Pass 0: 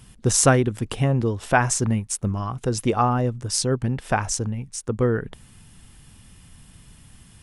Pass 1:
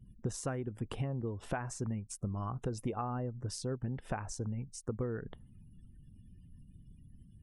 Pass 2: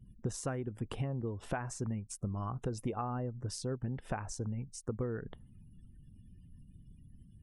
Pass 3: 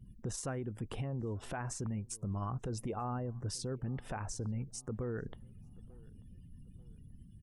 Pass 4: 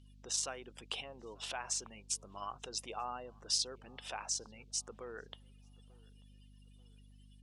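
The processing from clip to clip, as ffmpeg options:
-af "acompressor=threshold=-26dB:ratio=10,afftdn=nr=35:nf=-50,highshelf=f=2.5k:g=-9,volume=-6dB"
-af anull
-filter_complex "[0:a]alimiter=level_in=8dB:limit=-24dB:level=0:latency=1:release=20,volume=-8dB,asplit=2[a][b];[b]adelay=888,lowpass=f=1k:p=1,volume=-23.5dB,asplit=2[c][d];[d]adelay=888,lowpass=f=1k:p=1,volume=0.46,asplit=2[e][f];[f]adelay=888,lowpass=f=1k:p=1,volume=0.46[g];[a][c][e][g]amix=inputs=4:normalize=0,volume=2dB"
-af "highpass=670,lowpass=3.6k,aexciter=amount=5.8:drive=6.8:freq=2.7k,aeval=exprs='val(0)+0.00112*(sin(2*PI*50*n/s)+sin(2*PI*2*50*n/s)/2+sin(2*PI*3*50*n/s)/3+sin(2*PI*4*50*n/s)/4+sin(2*PI*5*50*n/s)/5)':c=same,volume=1dB"

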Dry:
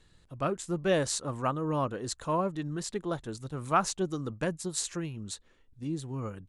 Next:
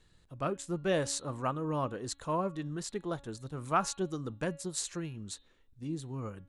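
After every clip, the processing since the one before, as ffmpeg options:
-af "bandreject=f=279.9:t=h:w=4,bandreject=f=559.8:t=h:w=4,bandreject=f=839.7:t=h:w=4,bandreject=f=1.1196k:t=h:w=4,bandreject=f=1.3995k:t=h:w=4,bandreject=f=1.6794k:t=h:w=4,bandreject=f=1.9593k:t=h:w=4,bandreject=f=2.2392k:t=h:w=4,bandreject=f=2.5191k:t=h:w=4,bandreject=f=2.799k:t=h:w=4,bandreject=f=3.0789k:t=h:w=4,bandreject=f=3.3588k:t=h:w=4,bandreject=f=3.6387k:t=h:w=4,bandreject=f=3.9186k:t=h:w=4,bandreject=f=4.1985k:t=h:w=4,volume=-3dB"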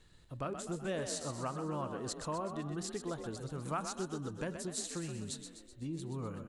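-filter_complex "[0:a]acompressor=threshold=-41dB:ratio=2.5,asplit=8[a][b][c][d][e][f][g][h];[b]adelay=126,afreqshift=38,volume=-8dB[i];[c]adelay=252,afreqshift=76,volume=-13.2dB[j];[d]adelay=378,afreqshift=114,volume=-18.4dB[k];[e]adelay=504,afreqshift=152,volume=-23.6dB[l];[f]adelay=630,afreqshift=190,volume=-28.8dB[m];[g]adelay=756,afreqshift=228,volume=-34dB[n];[h]adelay=882,afreqshift=266,volume=-39.2dB[o];[a][i][j][k][l][m][n][o]amix=inputs=8:normalize=0,volume=2dB"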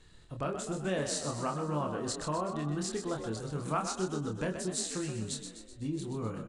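-filter_complex "[0:a]asplit=2[a][b];[b]adelay=27,volume=-4.5dB[c];[a][c]amix=inputs=2:normalize=0,aresample=22050,aresample=44100,volume=3.5dB"

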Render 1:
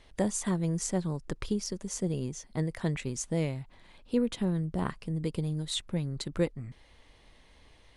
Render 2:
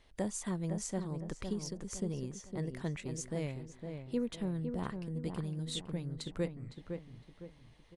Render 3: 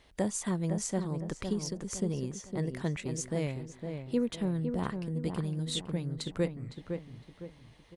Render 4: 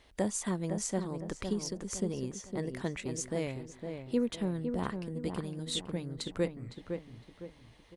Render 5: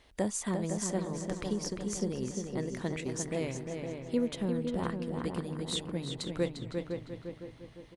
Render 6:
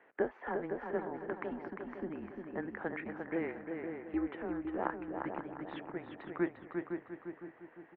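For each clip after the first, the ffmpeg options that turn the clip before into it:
-filter_complex "[0:a]asplit=2[a][b];[b]adelay=509,lowpass=f=1.8k:p=1,volume=-6dB,asplit=2[c][d];[d]adelay=509,lowpass=f=1.8k:p=1,volume=0.4,asplit=2[e][f];[f]adelay=509,lowpass=f=1.8k:p=1,volume=0.4,asplit=2[g][h];[h]adelay=509,lowpass=f=1.8k:p=1,volume=0.4,asplit=2[i][j];[j]adelay=509,lowpass=f=1.8k:p=1,volume=0.4[k];[a][c][e][g][i][k]amix=inputs=6:normalize=0,volume=-7dB"
-af "highpass=f=49:p=1,volume=5dB"
-af "equalizer=f=150:t=o:w=0.32:g=-8.5"
-filter_complex "[0:a]asplit=2[a][b];[b]adelay=350,lowpass=f=4.6k:p=1,volume=-5.5dB,asplit=2[c][d];[d]adelay=350,lowpass=f=4.6k:p=1,volume=0.37,asplit=2[e][f];[f]adelay=350,lowpass=f=4.6k:p=1,volume=0.37,asplit=2[g][h];[h]adelay=350,lowpass=f=4.6k:p=1,volume=0.37[i];[a][c][e][g][i]amix=inputs=5:normalize=0"
-af "highpass=f=520:t=q:w=0.5412,highpass=f=520:t=q:w=1.307,lowpass=f=2.2k:t=q:w=0.5176,lowpass=f=2.2k:t=q:w=0.7071,lowpass=f=2.2k:t=q:w=1.932,afreqshift=-170,volume=4dB"

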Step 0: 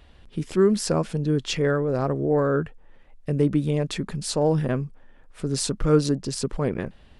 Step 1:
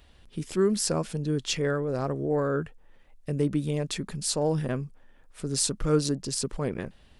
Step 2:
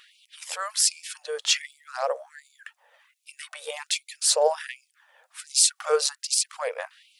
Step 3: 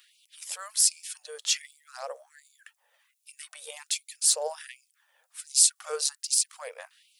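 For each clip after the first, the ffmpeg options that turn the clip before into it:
-af "highshelf=f=4.5k:g=9.5,volume=-5dB"
-af "aphaser=in_gain=1:out_gain=1:delay=2.7:decay=0.32:speed=0.43:type=sinusoidal,afftfilt=real='re*gte(b*sr/1024,440*pow(2200/440,0.5+0.5*sin(2*PI*1.3*pts/sr)))':imag='im*gte(b*sr/1024,440*pow(2200/440,0.5+0.5*sin(2*PI*1.3*pts/sr)))':win_size=1024:overlap=0.75,volume=7.5dB"
-af "crystalizer=i=3:c=0,volume=-11.5dB"

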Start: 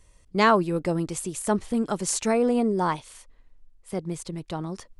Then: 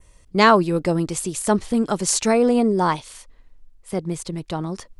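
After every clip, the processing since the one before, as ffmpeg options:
-af "adynamicequalizer=threshold=0.00708:dfrequency=4600:dqfactor=1.5:tfrequency=4600:tqfactor=1.5:attack=5:release=100:ratio=0.375:range=2:mode=boostabove:tftype=bell,volume=5dB"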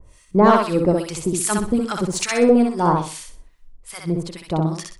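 -filter_complex "[0:a]acontrast=81,acrossover=split=1100[a][b];[a]aeval=exprs='val(0)*(1-1/2+1/2*cos(2*PI*2.4*n/s))':c=same[c];[b]aeval=exprs='val(0)*(1-1/2-1/2*cos(2*PI*2.4*n/s))':c=same[d];[c][d]amix=inputs=2:normalize=0,asplit=2[e][f];[f]aecho=0:1:63|126|189|252:0.708|0.219|0.068|0.0211[g];[e][g]amix=inputs=2:normalize=0,volume=-1dB"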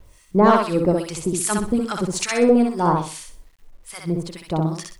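-af "acrusher=bits=9:mix=0:aa=0.000001,volume=-1dB"

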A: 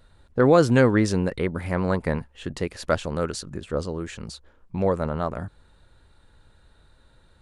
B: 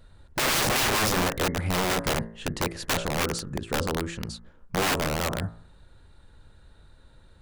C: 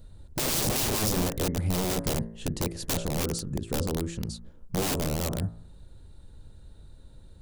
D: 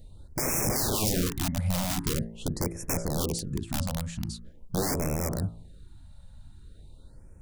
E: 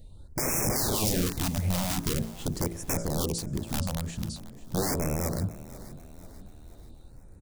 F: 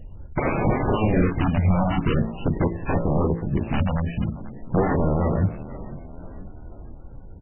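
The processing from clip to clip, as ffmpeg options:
-af "lowshelf=f=390:g=4,bandreject=f=56.11:t=h:w=4,bandreject=f=112.22:t=h:w=4,bandreject=f=168.33:t=h:w=4,bandreject=f=224.44:t=h:w=4,bandreject=f=280.55:t=h:w=4,bandreject=f=336.66:t=h:w=4,bandreject=f=392.77:t=h:w=4,bandreject=f=448.88:t=h:w=4,bandreject=f=504.99:t=h:w=4,bandreject=f=561.1:t=h:w=4,bandreject=f=617.21:t=h:w=4,bandreject=f=673.32:t=h:w=4,bandreject=f=729.43:t=h:w=4,bandreject=f=785.54:t=h:w=4,bandreject=f=841.65:t=h:w=4,bandreject=f=897.76:t=h:w=4,bandreject=f=953.87:t=h:w=4,bandreject=f=1.00998k:t=h:w=4,bandreject=f=1.06609k:t=h:w=4,bandreject=f=1.1222k:t=h:w=4,bandreject=f=1.17831k:t=h:w=4,bandreject=f=1.23442k:t=h:w=4,bandreject=f=1.29053k:t=h:w=4,bandreject=f=1.34664k:t=h:w=4,bandreject=f=1.40275k:t=h:w=4,bandreject=f=1.45886k:t=h:w=4,bandreject=f=1.51497k:t=h:w=4,bandreject=f=1.57108k:t=h:w=4,bandreject=f=1.62719k:t=h:w=4,bandreject=f=1.6833k:t=h:w=4,bandreject=f=1.73941k:t=h:w=4,bandreject=f=1.79552k:t=h:w=4,bandreject=f=1.85163k:t=h:w=4,bandreject=f=1.90774k:t=h:w=4,bandreject=f=1.96385k:t=h:w=4,bandreject=f=2.01996k:t=h:w=4,bandreject=f=2.07607k:t=h:w=4,bandreject=f=2.13218k:t=h:w=4,aeval=exprs='(mod(8.91*val(0)+1,2)-1)/8.91':c=same"
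-filter_complex "[0:a]equalizer=f=1.6k:w=0.51:g=-13.5,asplit=2[a][b];[b]acompressor=threshold=-38dB:ratio=6,volume=-2.5dB[c];[a][c]amix=inputs=2:normalize=0"
-af "afftfilt=real='re*(1-between(b*sr/1024,350*pow(3800/350,0.5+0.5*sin(2*PI*0.44*pts/sr))/1.41,350*pow(3800/350,0.5+0.5*sin(2*PI*0.44*pts/sr))*1.41))':imag='im*(1-between(b*sr/1024,350*pow(3800/350,0.5+0.5*sin(2*PI*0.44*pts/sr))/1.41,350*pow(3800/350,0.5+0.5*sin(2*PI*0.44*pts/sr))*1.41))':win_size=1024:overlap=0.75"
-filter_complex "[0:a]asplit=5[a][b][c][d][e];[b]adelay=488,afreqshift=47,volume=-17dB[f];[c]adelay=976,afreqshift=94,volume=-23.2dB[g];[d]adelay=1464,afreqshift=141,volume=-29.4dB[h];[e]adelay=1952,afreqshift=188,volume=-35.6dB[i];[a][f][g][h][i]amix=inputs=5:normalize=0"
-af "volume=9dB" -ar 12000 -c:a libmp3lame -b:a 8k

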